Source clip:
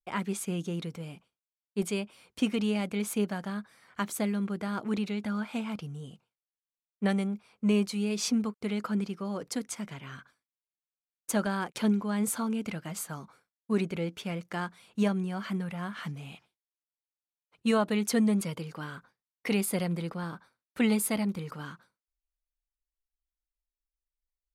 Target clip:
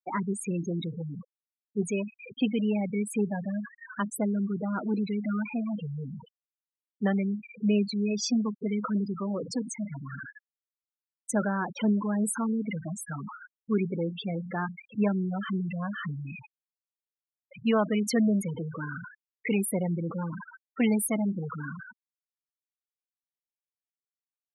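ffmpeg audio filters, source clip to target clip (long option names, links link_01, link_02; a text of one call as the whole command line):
ffmpeg -i in.wav -af "aeval=exprs='val(0)+0.5*0.0299*sgn(val(0))':channel_layout=same,highpass=130,afftfilt=real='re*gte(hypot(re,im),0.0631)':imag='im*gte(hypot(re,im),0.0631)':win_size=1024:overlap=0.75" out.wav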